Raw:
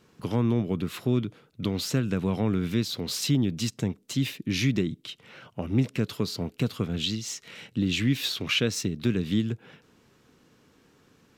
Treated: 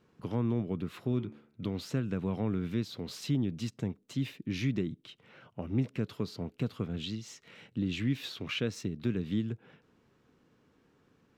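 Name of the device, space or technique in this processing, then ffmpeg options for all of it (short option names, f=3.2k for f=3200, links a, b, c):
through cloth: -filter_complex "[0:a]highshelf=f=3.5k:g=-11,asettb=1/sr,asplit=3[a][b][c];[a]atrim=end=1.084[d];[b]atrim=start=1.08:end=1.68,asetpts=PTS-STARTPTS,afade=t=in:d=0.004:c=qsin,afade=t=out:st=0.596:d=0.004:c=qsin,bandreject=f=73.39:t=h:w=4,bandreject=f=146.78:t=h:w=4,bandreject=f=220.17:t=h:w=4,bandreject=f=293.56:t=h:w=4,bandreject=f=366.95:t=h:w=4,bandreject=f=440.34:t=h:w=4,bandreject=f=513.73:t=h:w=4,bandreject=f=587.12:t=h:w=4,bandreject=f=660.51:t=h:w=4,bandreject=f=733.9:t=h:w=4,bandreject=f=807.29:t=h:w=4,bandreject=f=880.68:t=h:w=4,bandreject=f=954.07:t=h:w=4,bandreject=f=1.02746k:t=h:w=4,bandreject=f=1.10085k:t=h:w=4,bandreject=f=1.17424k:t=h:w=4,bandreject=f=1.24763k:t=h:w=4,bandreject=f=1.32102k:t=h:w=4,bandreject=f=1.39441k:t=h:w=4,bandreject=f=1.4678k:t=h:w=4,bandreject=f=1.54119k:t=h:w=4,bandreject=f=1.61458k:t=h:w=4,bandreject=f=1.68797k:t=h:w=4,bandreject=f=1.76136k:t=h:w=4,bandreject=f=1.83475k:t=h:w=4,bandreject=f=1.90814k:t=h:w=4,bandreject=f=1.98153k:t=h:w=4,bandreject=f=2.05492k:t=h:w=4,bandreject=f=2.12831k:t=h:w=4,bandreject=f=2.2017k:t=h:w=4,bandreject=f=2.27509k:t=h:w=4,bandreject=f=2.34848k:t=h:w=4,bandreject=f=2.42187k:t=h:w=4,bandreject=f=2.49526k:t=h:w=4,bandreject=f=2.56865k:t=h:w=4[e];[c]atrim=start=1.676[f];[d][e]acrossfade=d=0.004:c1=hsin:c2=qsin[g];[g][f]acrossfade=d=0.004:c1=qsin:c2=hsin,volume=-6dB"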